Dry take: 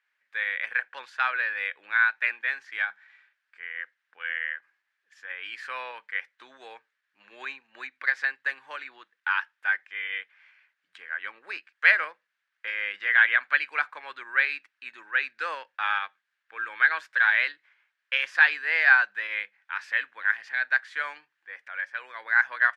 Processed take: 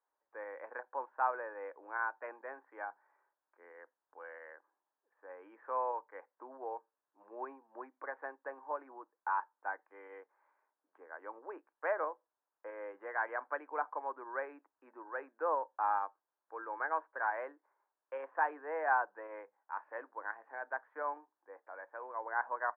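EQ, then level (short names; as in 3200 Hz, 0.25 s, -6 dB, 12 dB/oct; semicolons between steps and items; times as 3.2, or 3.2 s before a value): elliptic band-pass 280–970 Hz, stop band 70 dB; air absorption 140 m; +6.0 dB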